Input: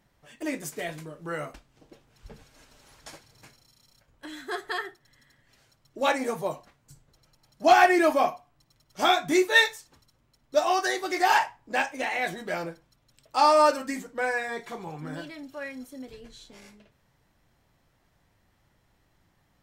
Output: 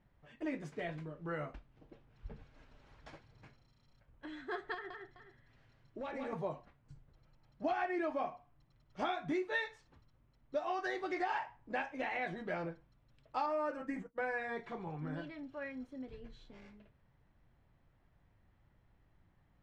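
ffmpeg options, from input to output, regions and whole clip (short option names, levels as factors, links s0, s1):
-filter_complex "[0:a]asettb=1/sr,asplit=3[s0][s1][s2];[s0]atrim=end=4.744[s3];[s1]atrim=start=4.74:end=6.33,asetpts=PTS-STARTPTS,afade=t=in:d=0.004:c=qsin,afade=t=out:st=1.586:d=0.004:c=qsin,acompressor=threshold=0.0224:ratio=5:attack=3.2:release=140:knee=1:detection=peak,volume=33.5,asoftclip=hard,volume=0.0299,aecho=1:1:162|418:0.668|0.2,atrim=end_sample=70119[s4];[s2]atrim=start=6.326[s5];[s3][s4]acrossfade=d=0.004:c1=hsin:c2=qsin[s6];[s6][s5]acrossfade=d=0.004:c1=qsin:c2=hsin,asettb=1/sr,asplit=3[s7][s8][s9];[s7]atrim=end=13.464[s10];[s8]atrim=start=13.46:end=14.18,asetpts=PTS-STARTPTS,afade=t=in:d=0.004:c=qsin,afade=t=out:st=0.716:d=0.004:c=qsin,agate=range=0.0224:threshold=0.0126:ratio=3:release=100:detection=peak,equalizer=f=4100:w=1.4:g=-12,aecho=1:1:6.1:0.38,atrim=end_sample=31752[s11];[s9]atrim=start=14.176[s12];[s10][s11]acrossfade=d=0.004:c1=hsin:c2=qsin[s13];[s13][s12]acrossfade=d=0.004:c1=qsin:c2=hsin,lowpass=2700,lowshelf=f=160:g=8.5,acompressor=threshold=0.0501:ratio=6,volume=0.447"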